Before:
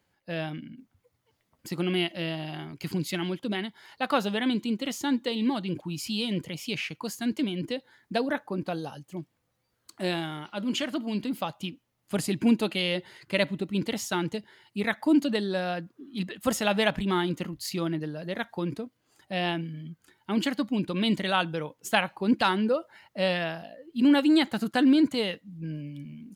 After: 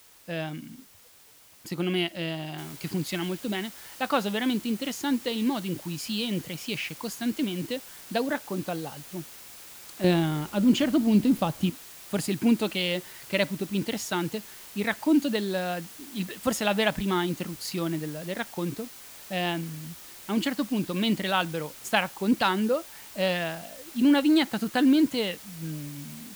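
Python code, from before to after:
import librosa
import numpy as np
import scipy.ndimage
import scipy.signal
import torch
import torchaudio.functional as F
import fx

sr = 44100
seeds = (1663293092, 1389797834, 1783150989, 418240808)

y = fx.noise_floor_step(x, sr, seeds[0], at_s=2.58, before_db=-55, after_db=-46, tilt_db=0.0)
y = fx.low_shelf(y, sr, hz=480.0, db=12.0, at=(10.04, 11.7))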